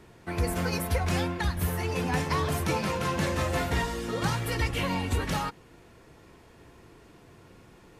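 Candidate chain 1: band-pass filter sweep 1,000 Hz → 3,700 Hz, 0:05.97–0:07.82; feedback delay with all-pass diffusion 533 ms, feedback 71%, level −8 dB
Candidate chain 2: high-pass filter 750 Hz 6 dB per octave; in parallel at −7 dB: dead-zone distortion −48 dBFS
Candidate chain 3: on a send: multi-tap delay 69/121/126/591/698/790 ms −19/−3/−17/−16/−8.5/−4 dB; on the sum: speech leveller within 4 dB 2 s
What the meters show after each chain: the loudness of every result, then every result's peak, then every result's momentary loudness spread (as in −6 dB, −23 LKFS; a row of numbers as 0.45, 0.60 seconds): −38.0, −30.5, −26.5 LKFS; −21.5, −15.5, −12.0 dBFS; 15, 3, 21 LU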